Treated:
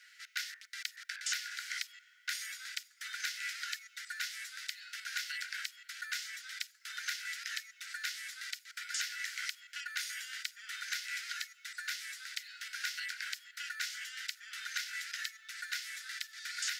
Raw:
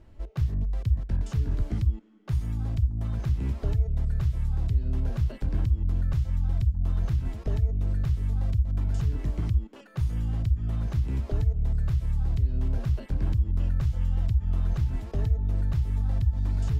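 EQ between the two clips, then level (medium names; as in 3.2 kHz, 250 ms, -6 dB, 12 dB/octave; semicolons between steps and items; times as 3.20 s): rippled Chebyshev high-pass 1.4 kHz, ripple 6 dB; +18.0 dB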